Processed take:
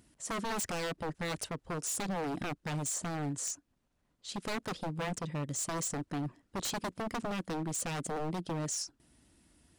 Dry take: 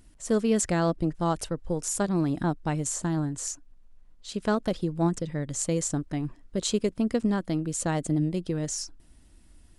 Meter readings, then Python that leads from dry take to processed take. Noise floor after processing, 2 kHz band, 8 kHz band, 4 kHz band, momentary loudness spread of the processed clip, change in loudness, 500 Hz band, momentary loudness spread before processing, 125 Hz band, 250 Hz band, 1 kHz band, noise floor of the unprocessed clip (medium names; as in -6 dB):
-77 dBFS, -1.5 dB, -4.5 dB, -3.0 dB, 5 LU, -8.0 dB, -10.0 dB, 8 LU, -9.5 dB, -11.5 dB, -4.5 dB, -56 dBFS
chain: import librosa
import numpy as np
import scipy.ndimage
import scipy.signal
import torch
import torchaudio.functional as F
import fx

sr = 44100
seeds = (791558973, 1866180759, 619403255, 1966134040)

y = scipy.signal.sosfilt(scipy.signal.butter(2, 100.0, 'highpass', fs=sr, output='sos'), x)
y = 10.0 ** (-27.0 / 20.0) * (np.abs((y / 10.0 ** (-27.0 / 20.0) + 3.0) % 4.0 - 2.0) - 1.0)
y = F.gain(torch.from_numpy(y), -2.5).numpy()